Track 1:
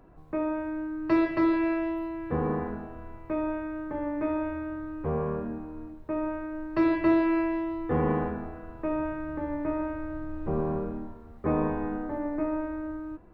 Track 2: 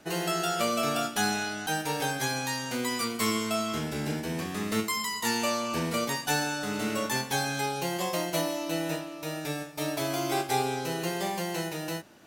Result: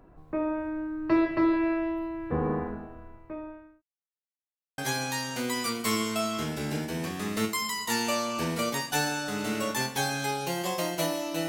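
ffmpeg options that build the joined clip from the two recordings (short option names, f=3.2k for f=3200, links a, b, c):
-filter_complex "[0:a]apad=whole_dur=11.48,atrim=end=11.48,asplit=2[a][b];[a]atrim=end=3.82,asetpts=PTS-STARTPTS,afade=t=out:st=2.58:d=1.24[c];[b]atrim=start=3.82:end=4.78,asetpts=PTS-STARTPTS,volume=0[d];[1:a]atrim=start=2.13:end=8.83,asetpts=PTS-STARTPTS,afade=t=in:d=0.004:c=hsin[e];[c][d][e]concat=n=3:v=0:a=1"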